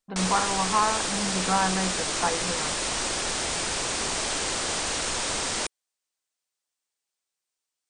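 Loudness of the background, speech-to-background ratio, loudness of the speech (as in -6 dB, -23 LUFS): -26.5 LUFS, -1.5 dB, -28.0 LUFS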